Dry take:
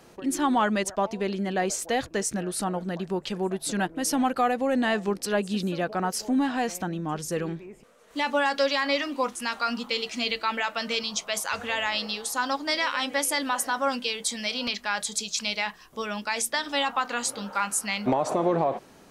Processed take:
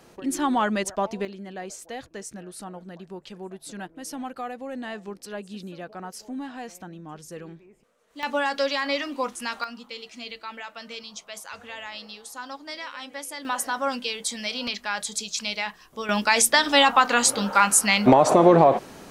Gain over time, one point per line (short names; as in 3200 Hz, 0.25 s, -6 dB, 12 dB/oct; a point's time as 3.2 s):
0 dB
from 1.25 s -10 dB
from 8.23 s -1 dB
from 9.64 s -10 dB
from 13.45 s -0.5 dB
from 16.09 s +9 dB